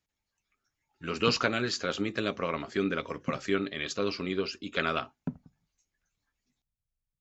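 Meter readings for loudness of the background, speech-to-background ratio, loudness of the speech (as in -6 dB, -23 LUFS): -41.5 LUFS, 10.5 dB, -31.0 LUFS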